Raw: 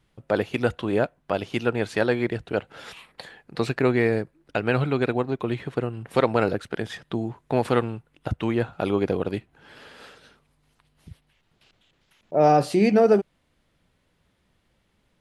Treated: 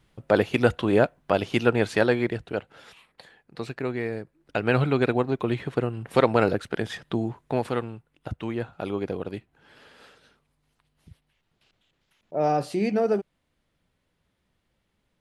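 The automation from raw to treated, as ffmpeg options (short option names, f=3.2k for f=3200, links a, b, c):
-af "volume=12.5dB,afade=t=out:st=1.77:d=1.09:silence=0.266073,afade=t=in:st=4.2:d=0.55:silence=0.334965,afade=t=out:st=7.28:d=0.43:silence=0.446684"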